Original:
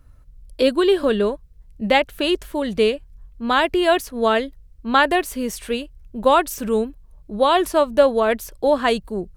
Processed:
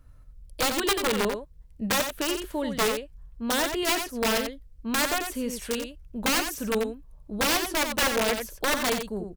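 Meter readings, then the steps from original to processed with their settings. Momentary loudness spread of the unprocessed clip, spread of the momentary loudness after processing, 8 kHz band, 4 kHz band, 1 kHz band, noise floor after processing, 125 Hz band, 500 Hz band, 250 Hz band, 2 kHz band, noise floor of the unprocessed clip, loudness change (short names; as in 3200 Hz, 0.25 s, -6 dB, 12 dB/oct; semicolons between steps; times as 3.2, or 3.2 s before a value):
13 LU, 10 LU, +6.5 dB, -2.0 dB, -9.5 dB, -50 dBFS, n/a, -11.0 dB, -7.0 dB, -4.0 dB, -48 dBFS, -7.0 dB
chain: notch 370 Hz, Q 12; in parallel at -2 dB: compressor 16:1, threshold -27 dBFS, peak gain reduction 19 dB; on the sum: wrapped overs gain 10 dB; echo 89 ms -7 dB; gain -8.5 dB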